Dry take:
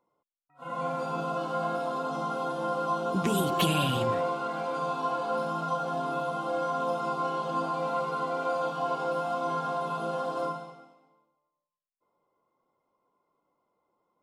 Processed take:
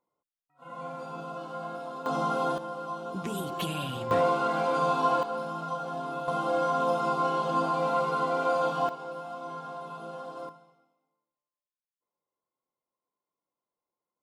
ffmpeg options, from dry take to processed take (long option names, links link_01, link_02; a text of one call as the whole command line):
ffmpeg -i in.wav -af "asetnsamples=nb_out_samples=441:pad=0,asendcmd='2.06 volume volume 3.5dB;2.58 volume volume -7dB;4.11 volume volume 5dB;5.23 volume volume -3.5dB;6.28 volume volume 3dB;8.89 volume volume -8.5dB;10.49 volume volume -16dB',volume=-7dB" out.wav